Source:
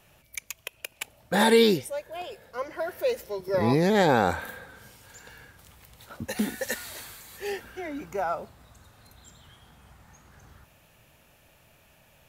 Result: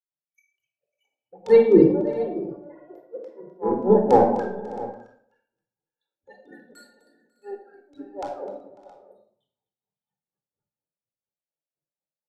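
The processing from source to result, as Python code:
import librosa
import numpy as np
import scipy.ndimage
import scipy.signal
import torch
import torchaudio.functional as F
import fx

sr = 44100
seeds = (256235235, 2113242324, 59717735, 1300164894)

p1 = scipy.signal.sosfilt(scipy.signal.butter(2, 290.0, 'highpass', fs=sr, output='sos'), x)
p2 = fx.peak_eq(p1, sr, hz=2000.0, db=-10.5, octaves=1.7)
p3 = fx.spec_topn(p2, sr, count=16)
p4 = fx.filter_lfo_lowpass(p3, sr, shape='saw_down', hz=3.4, low_hz=400.0, high_hz=6200.0, q=1.4)
p5 = fx.transient(p4, sr, attack_db=-7, sustain_db=8)
p6 = fx.granulator(p5, sr, seeds[0], grain_ms=204.0, per_s=4.2, spray_ms=21.0, spread_st=0)
p7 = p6 + fx.echo_multitap(p6, sr, ms=(255, 546, 608, 669), db=(-12.5, -14.5, -14.0, -12.0), dry=0)
p8 = fx.room_shoebox(p7, sr, seeds[1], volume_m3=2400.0, walls='furnished', distance_m=4.2)
p9 = fx.band_widen(p8, sr, depth_pct=100)
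y = p9 * 10.0 ** (-1.0 / 20.0)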